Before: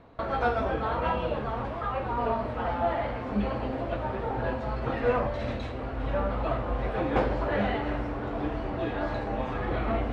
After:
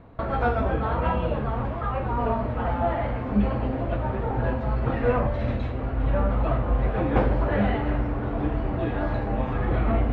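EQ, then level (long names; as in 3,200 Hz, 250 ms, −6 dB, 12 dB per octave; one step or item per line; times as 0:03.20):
bass and treble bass +7 dB, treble −11 dB
+1.5 dB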